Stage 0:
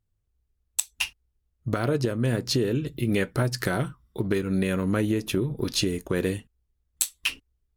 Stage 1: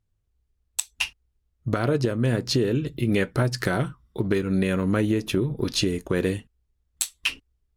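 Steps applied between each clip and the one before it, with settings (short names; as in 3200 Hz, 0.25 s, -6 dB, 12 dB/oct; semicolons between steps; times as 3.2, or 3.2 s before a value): high shelf 11000 Hz -10.5 dB; gain +2 dB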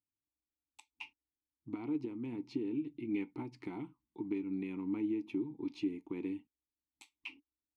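vowel filter u; gain -4.5 dB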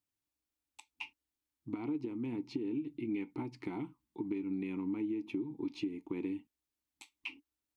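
compressor, threshold -36 dBFS, peak gain reduction 7 dB; gain +3.5 dB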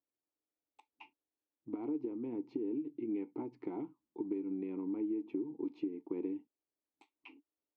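band-pass 480 Hz, Q 1.6; gain +4.5 dB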